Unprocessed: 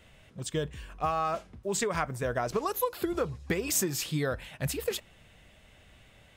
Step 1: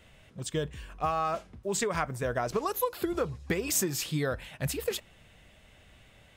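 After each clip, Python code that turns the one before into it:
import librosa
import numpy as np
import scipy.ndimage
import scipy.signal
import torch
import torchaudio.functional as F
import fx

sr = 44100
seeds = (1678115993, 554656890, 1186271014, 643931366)

y = x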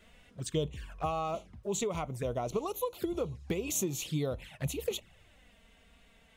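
y = fx.rider(x, sr, range_db=10, speed_s=2.0)
y = fx.env_flanger(y, sr, rest_ms=5.3, full_db=-29.5)
y = F.gain(torch.from_numpy(y), -1.5).numpy()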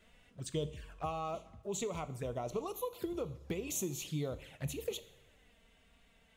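y = fx.rev_double_slope(x, sr, seeds[0], early_s=0.67, late_s=2.3, knee_db=-18, drr_db=12.0)
y = F.gain(torch.from_numpy(y), -5.0).numpy()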